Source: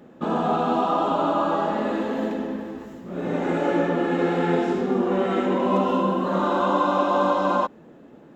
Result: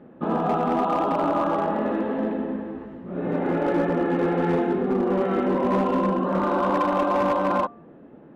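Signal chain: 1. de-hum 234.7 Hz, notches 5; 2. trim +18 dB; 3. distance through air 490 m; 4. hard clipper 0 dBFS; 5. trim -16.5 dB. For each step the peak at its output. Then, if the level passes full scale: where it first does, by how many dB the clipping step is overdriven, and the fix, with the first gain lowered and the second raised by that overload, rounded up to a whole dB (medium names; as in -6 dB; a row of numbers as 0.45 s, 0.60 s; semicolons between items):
-8.0 dBFS, +10.0 dBFS, +8.5 dBFS, 0.0 dBFS, -16.5 dBFS; step 2, 8.5 dB; step 2 +9 dB, step 5 -7.5 dB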